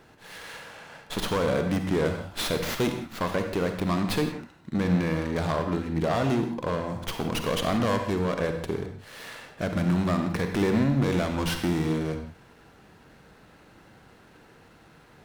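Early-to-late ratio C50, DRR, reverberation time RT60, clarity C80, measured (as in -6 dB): 6.0 dB, 5.5 dB, no single decay rate, 8.5 dB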